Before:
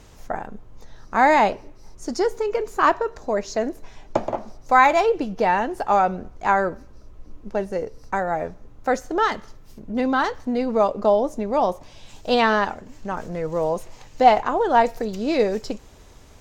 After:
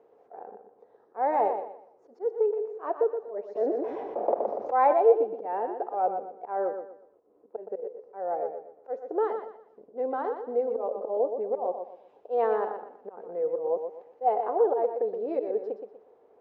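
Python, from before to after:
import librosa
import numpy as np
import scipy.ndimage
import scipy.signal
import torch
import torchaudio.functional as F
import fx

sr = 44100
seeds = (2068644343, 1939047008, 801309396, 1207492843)

p1 = fx.peak_eq(x, sr, hz=720.0, db=6.5, octaves=0.47)
p2 = fx.notch(p1, sr, hz=630.0, q=12.0)
p3 = fx.auto_swell(p2, sr, attack_ms=157.0)
p4 = fx.ladder_bandpass(p3, sr, hz=500.0, resonance_pct=65)
p5 = p4 + fx.echo_feedback(p4, sr, ms=121, feedback_pct=31, wet_db=-7.5, dry=0)
p6 = fx.env_flatten(p5, sr, amount_pct=50, at=(3.55, 4.92), fade=0.02)
y = p6 * librosa.db_to_amplitude(1.5)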